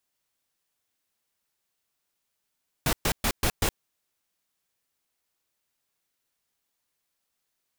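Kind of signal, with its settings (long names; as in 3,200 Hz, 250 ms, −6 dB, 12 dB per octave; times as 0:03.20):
noise bursts pink, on 0.07 s, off 0.12 s, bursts 5, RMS −24 dBFS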